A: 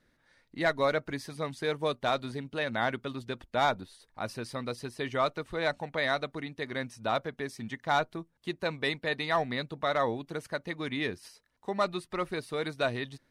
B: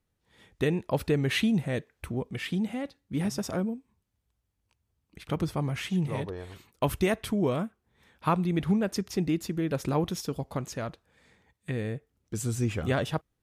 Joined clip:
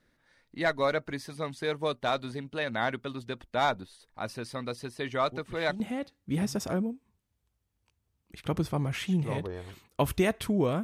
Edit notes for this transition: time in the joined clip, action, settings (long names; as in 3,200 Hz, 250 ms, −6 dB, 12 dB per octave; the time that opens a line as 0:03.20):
A
0:05.32: mix in B from 0:02.15 0.48 s −12 dB
0:05.80: continue with B from 0:02.63